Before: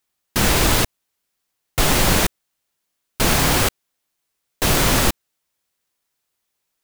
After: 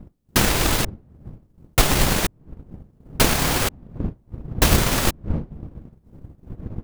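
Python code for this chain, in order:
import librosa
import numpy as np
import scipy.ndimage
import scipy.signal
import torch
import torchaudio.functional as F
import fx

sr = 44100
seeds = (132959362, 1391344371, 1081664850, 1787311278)

y = fx.dmg_wind(x, sr, seeds[0], corner_hz=160.0, level_db=-28.0)
y = fx.transient(y, sr, attack_db=8, sustain_db=-7)
y = y * librosa.db_to_amplitude(-4.0)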